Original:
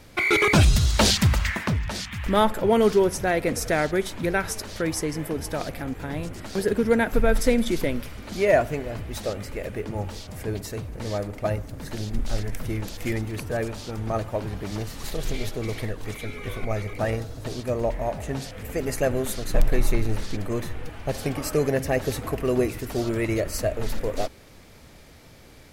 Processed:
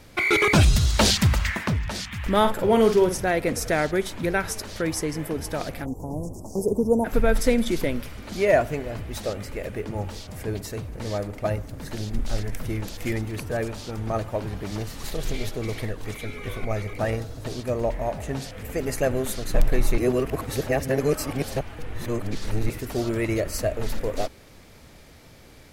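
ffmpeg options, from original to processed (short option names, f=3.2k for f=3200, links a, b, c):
-filter_complex "[0:a]asettb=1/sr,asplit=3[a][b][c];[a]atrim=end=2.394[d];[b]atrim=start=2.39:end=3.2,asetpts=PTS-STARTPTS,afade=t=in:d=0.004:c=qsin,afade=t=out:st=0.806:d=0.004:c=qsin,asplit=2[e][f];[f]adelay=49,volume=-7.5dB[g];[e][g]amix=inputs=2:normalize=0,atrim=end_sample=35721[h];[c]atrim=start=3.196[i];[d][h]acrossfade=d=0.004:c1=hsin:c2=qsin[j];[j][i]acrossfade=d=0.004:c1=qsin:c2=hsin,asplit=3[k][l][m];[k]afade=t=out:st=5.84:d=0.02[n];[l]asuperstop=centerf=2400:order=12:qfactor=0.51,afade=t=in:st=5.84:d=0.02,afade=t=out:st=7.04:d=0.02[o];[m]afade=t=in:st=7.04:d=0.02[p];[n][o][p]amix=inputs=3:normalize=0,asplit=3[q][r][s];[q]atrim=end=19.982[t];[r]atrim=start=19.978:end=22.702,asetpts=PTS-STARTPTS,areverse[u];[s]atrim=start=22.698[v];[t][u]acrossfade=d=0.004:c1=hsin:c2=hsin[w];[w][v]acrossfade=d=0.004:c1=hsin:c2=hsin"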